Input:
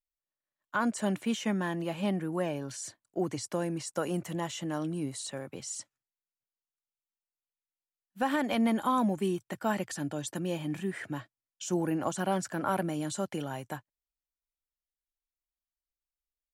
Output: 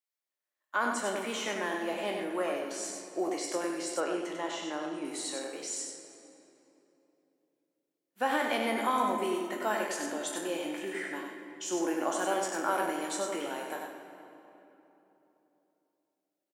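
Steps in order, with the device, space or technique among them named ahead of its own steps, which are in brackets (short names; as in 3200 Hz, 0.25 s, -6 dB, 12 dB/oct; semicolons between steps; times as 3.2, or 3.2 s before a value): spectral trails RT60 0.35 s; PA in a hall (HPF 130 Hz; bell 2100 Hz +3 dB 0.32 oct; echo 97 ms -5 dB; reverb RT60 3.3 s, pre-delay 10 ms, DRR 6.5 dB); HPF 300 Hz 24 dB/oct; 4–5.05 air absorption 71 m; gain -1 dB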